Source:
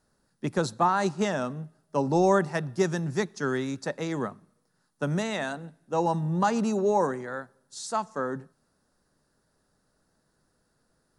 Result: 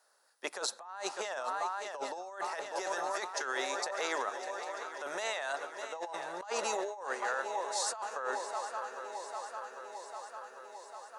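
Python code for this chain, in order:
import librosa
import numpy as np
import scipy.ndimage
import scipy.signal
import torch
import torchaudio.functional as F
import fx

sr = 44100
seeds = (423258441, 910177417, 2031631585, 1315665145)

p1 = scipy.signal.sosfilt(scipy.signal.butter(4, 570.0, 'highpass', fs=sr, output='sos'), x)
p2 = p1 + fx.echo_swing(p1, sr, ms=798, ratio=3, feedback_pct=67, wet_db=-15.5, dry=0)
y = fx.over_compress(p2, sr, threshold_db=-37.0, ratio=-1.0)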